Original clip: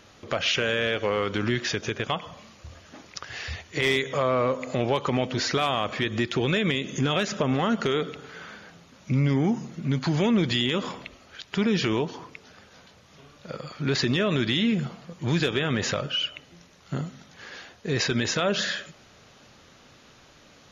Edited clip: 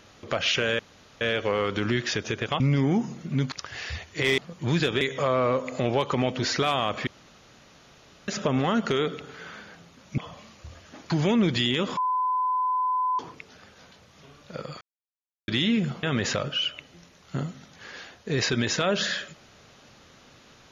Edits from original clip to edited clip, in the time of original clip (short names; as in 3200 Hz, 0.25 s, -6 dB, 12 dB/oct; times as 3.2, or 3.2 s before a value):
0.79 insert room tone 0.42 s
2.18–3.1 swap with 9.13–10.05
6.02–7.23 room tone
10.92–12.14 bleep 1010 Hz -22 dBFS
13.76–14.43 mute
14.98–15.61 move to 3.96